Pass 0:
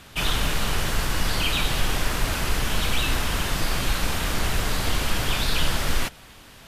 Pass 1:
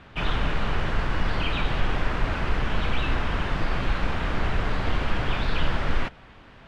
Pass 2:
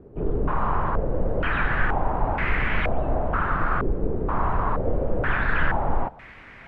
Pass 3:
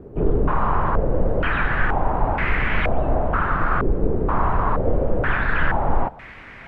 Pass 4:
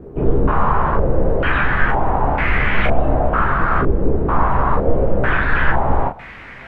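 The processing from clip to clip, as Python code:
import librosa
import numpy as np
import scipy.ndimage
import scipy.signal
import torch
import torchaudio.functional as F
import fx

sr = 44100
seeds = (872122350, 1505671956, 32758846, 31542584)

y1 = scipy.signal.sosfilt(scipy.signal.butter(2, 2200.0, 'lowpass', fs=sr, output='sos'), x)
y2 = fx.dmg_noise_colour(y1, sr, seeds[0], colour='white', level_db=-51.0)
y2 = fx.filter_held_lowpass(y2, sr, hz=2.1, low_hz=420.0, high_hz=2100.0)
y3 = fx.rider(y2, sr, range_db=10, speed_s=0.5)
y3 = y3 * 10.0 ** (3.5 / 20.0)
y4 = fx.room_early_taps(y3, sr, ms=(15, 40), db=(-4.0, -5.5))
y4 = y4 * 10.0 ** (2.0 / 20.0)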